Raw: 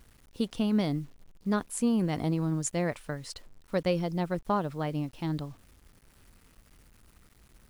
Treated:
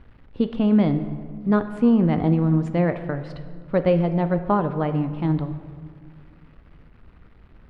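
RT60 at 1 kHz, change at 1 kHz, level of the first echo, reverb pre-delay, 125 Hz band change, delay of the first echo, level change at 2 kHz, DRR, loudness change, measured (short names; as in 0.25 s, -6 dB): 1.8 s, +7.5 dB, none, 3 ms, +10.0 dB, none, +5.0 dB, 9.0 dB, +9.0 dB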